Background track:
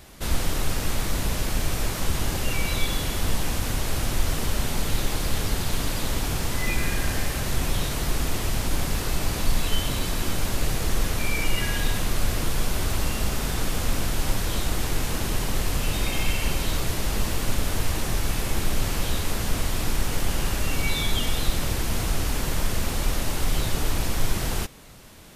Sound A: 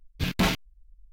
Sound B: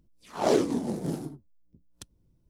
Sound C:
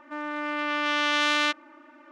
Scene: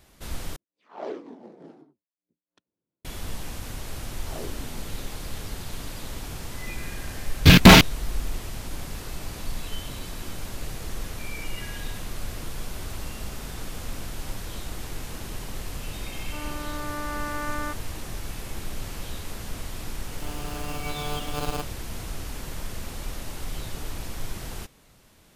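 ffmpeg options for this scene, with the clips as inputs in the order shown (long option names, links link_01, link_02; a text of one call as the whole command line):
ffmpeg -i bed.wav -i cue0.wav -i cue1.wav -i cue2.wav -filter_complex "[2:a]asplit=2[link_01][link_02];[3:a]asplit=2[link_03][link_04];[0:a]volume=-9.5dB[link_05];[link_01]highpass=330,lowpass=2600[link_06];[1:a]alimiter=level_in=26.5dB:limit=-1dB:release=50:level=0:latency=1[link_07];[link_03]asuperstop=centerf=3500:order=4:qfactor=0.55[link_08];[link_04]acrusher=samples=23:mix=1:aa=0.000001[link_09];[link_05]asplit=2[link_10][link_11];[link_10]atrim=end=0.564[link_12];[link_06]atrim=end=2.49,asetpts=PTS-STARTPTS,volume=-10dB[link_13];[link_11]atrim=start=3.046[link_14];[link_02]atrim=end=2.49,asetpts=PTS-STARTPTS,volume=-16dB,afade=type=in:duration=0.004:curve=hsin,afade=type=out:start_time=2.486:duration=0.004:curve=hsin,adelay=171549S[link_15];[link_07]atrim=end=1.12,asetpts=PTS-STARTPTS,volume=-1.5dB,afade=type=in:duration=0.004:curve=hsin,afade=type=out:start_time=1.116:duration=0.004:curve=hsin,adelay=7260[link_16];[link_08]atrim=end=2.11,asetpts=PTS-STARTPTS,volume=-4.5dB,afade=type=in:duration=0.004:curve=hsin,afade=type=out:start_time=2.106:duration=0.004:curve=hsin,adelay=16210[link_17];[link_09]atrim=end=2.11,asetpts=PTS-STARTPTS,volume=-7.5dB,afade=type=in:duration=0.004:curve=hsin,afade=type=out:start_time=2.106:duration=0.004:curve=hsin,adelay=20100[link_18];[link_12][link_13]acrossfade=duration=0.004:curve1=hsin:curve2=hsin[link_19];[link_19][link_14]acrossfade=duration=0.004:curve1=hsin:curve2=hsin[link_20];[link_20][link_15][link_16][link_17][link_18]amix=inputs=5:normalize=0" out.wav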